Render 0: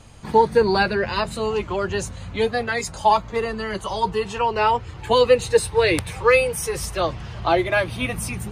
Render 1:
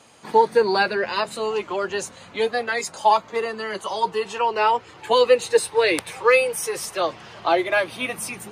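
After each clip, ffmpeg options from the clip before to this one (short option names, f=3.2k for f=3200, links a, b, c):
-af "highpass=310"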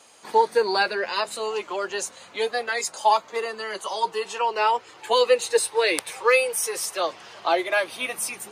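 -af "bass=f=250:g=-13,treble=f=4k:g=5,volume=-2dB"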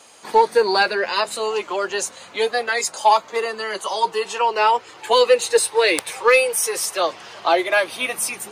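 -af "asoftclip=type=tanh:threshold=-7.5dB,volume=5dB"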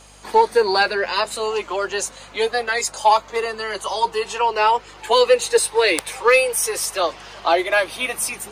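-af "aeval=exprs='val(0)+0.00316*(sin(2*PI*50*n/s)+sin(2*PI*2*50*n/s)/2+sin(2*PI*3*50*n/s)/3+sin(2*PI*4*50*n/s)/4+sin(2*PI*5*50*n/s)/5)':c=same"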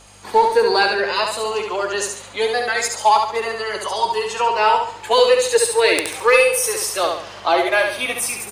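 -af "aecho=1:1:70|140|210|280|350:0.596|0.232|0.0906|0.0353|0.0138"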